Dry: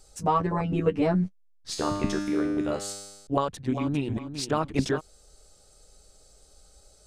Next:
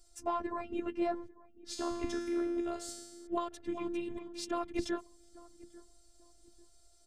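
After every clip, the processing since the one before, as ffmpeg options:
ffmpeg -i in.wav -filter_complex "[0:a]afftfilt=real='hypot(re,im)*cos(PI*b)':imag='0':win_size=512:overlap=0.75,asplit=2[link_01][link_02];[link_02]adelay=844,lowpass=frequency=930:poles=1,volume=-19.5dB,asplit=2[link_03][link_04];[link_04]adelay=844,lowpass=frequency=930:poles=1,volume=0.36,asplit=2[link_05][link_06];[link_06]adelay=844,lowpass=frequency=930:poles=1,volume=0.36[link_07];[link_01][link_03][link_05][link_07]amix=inputs=4:normalize=0,volume=-5.5dB" out.wav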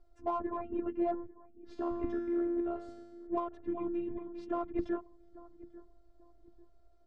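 ffmpeg -i in.wav -filter_complex "[0:a]lowpass=1200,asplit=2[link_01][link_02];[link_02]asoftclip=type=tanh:threshold=-37dB,volume=-9dB[link_03];[link_01][link_03]amix=inputs=2:normalize=0" out.wav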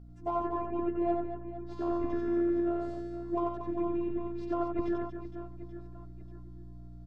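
ffmpeg -i in.wav -af "aeval=exprs='val(0)+0.00355*(sin(2*PI*60*n/s)+sin(2*PI*2*60*n/s)/2+sin(2*PI*3*60*n/s)/3+sin(2*PI*4*60*n/s)/4+sin(2*PI*5*60*n/s)/5)':channel_layout=same,aecho=1:1:90|234|464.4|833|1423:0.631|0.398|0.251|0.158|0.1" out.wav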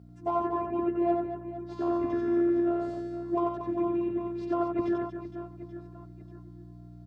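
ffmpeg -i in.wav -af "highpass=92,volume=3.5dB" out.wav

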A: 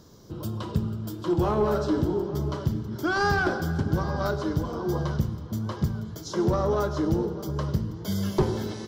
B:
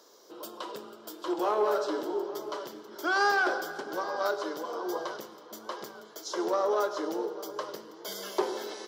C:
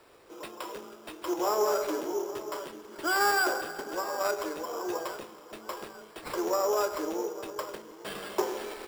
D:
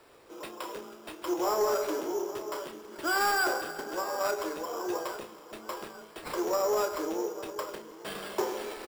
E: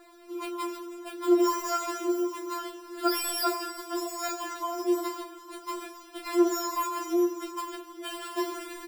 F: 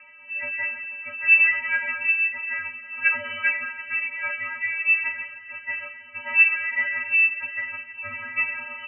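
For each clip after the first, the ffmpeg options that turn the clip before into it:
ffmpeg -i in.wav -af "highpass=frequency=410:width=0.5412,highpass=frequency=410:width=1.3066" out.wav
ffmpeg -i in.wav -af "acrusher=samples=7:mix=1:aa=0.000001" out.wav
ffmpeg -i in.wav -filter_complex "[0:a]asoftclip=type=tanh:threshold=-19.5dB,asplit=2[link_01][link_02];[link_02]adelay=31,volume=-11dB[link_03];[link_01][link_03]amix=inputs=2:normalize=0" out.wav
ffmpeg -i in.wav -filter_complex "[0:a]acrossover=split=230|5800[link_01][link_02][link_03];[link_01]acompressor=threshold=-58dB:ratio=10[link_04];[link_04][link_02][link_03]amix=inputs=3:normalize=0,afftfilt=real='re*4*eq(mod(b,16),0)':imag='im*4*eq(mod(b,16),0)':win_size=2048:overlap=0.75,volume=5dB" out.wav
ffmpeg -i in.wav -af "lowpass=frequency=2600:width_type=q:width=0.5098,lowpass=frequency=2600:width_type=q:width=0.6013,lowpass=frequency=2600:width_type=q:width=0.9,lowpass=frequency=2600:width_type=q:width=2.563,afreqshift=-3000,volume=5.5dB" out.wav

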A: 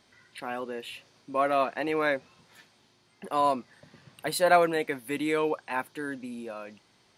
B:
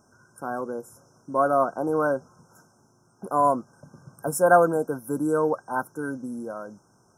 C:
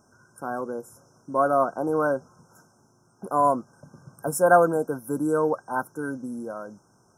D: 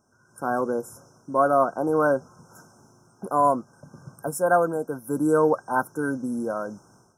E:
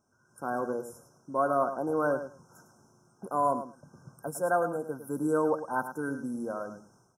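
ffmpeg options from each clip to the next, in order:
ffmpeg -i in.wav -af "equalizer=frequency=140:width_type=o:width=0.82:gain=5,afftfilt=real='re*(1-between(b*sr/4096,1600,5200))':imag='im*(1-between(b*sr/4096,1600,5200))':win_size=4096:overlap=0.75,volume=4dB" out.wav
ffmpeg -i in.wav -af anull out.wav
ffmpeg -i in.wav -af "dynaudnorm=framelen=240:gausssize=3:maxgain=13.5dB,volume=-7dB" out.wav
ffmpeg -i in.wav -af "aecho=1:1:106|212:0.299|0.0448,volume=-7dB" out.wav

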